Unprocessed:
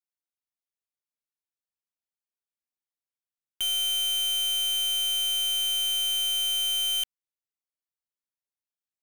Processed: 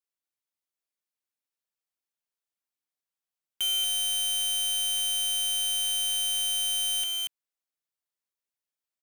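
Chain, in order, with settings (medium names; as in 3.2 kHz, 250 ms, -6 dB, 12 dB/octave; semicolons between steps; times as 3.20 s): bass shelf 160 Hz -9 dB; on a send: delay 234 ms -4 dB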